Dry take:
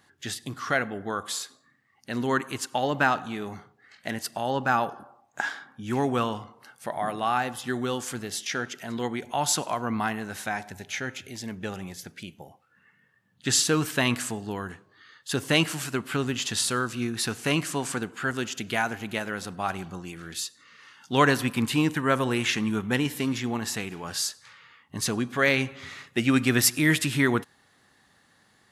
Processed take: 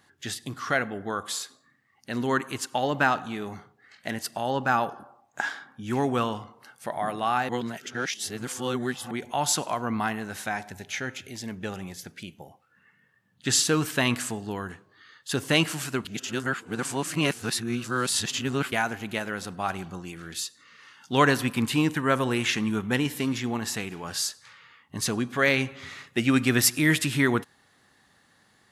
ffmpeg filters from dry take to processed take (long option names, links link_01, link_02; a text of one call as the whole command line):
ffmpeg -i in.wav -filter_complex "[0:a]asplit=5[link_01][link_02][link_03][link_04][link_05];[link_01]atrim=end=7.492[link_06];[link_02]atrim=start=7.488:end=9.112,asetpts=PTS-STARTPTS,areverse[link_07];[link_03]atrim=start=9.108:end=16.052[link_08];[link_04]atrim=start=16.048:end=18.722,asetpts=PTS-STARTPTS,areverse[link_09];[link_05]atrim=start=18.718[link_10];[link_06][link_07]acrossfade=duration=0.004:curve1=hsin:curve2=hsin[link_11];[link_11][link_08]acrossfade=duration=0.004:curve1=hsin:curve2=hsin[link_12];[link_12][link_09]acrossfade=duration=0.004:curve1=hsin:curve2=hsin[link_13];[link_13][link_10]acrossfade=duration=0.004:curve1=hsin:curve2=hsin" out.wav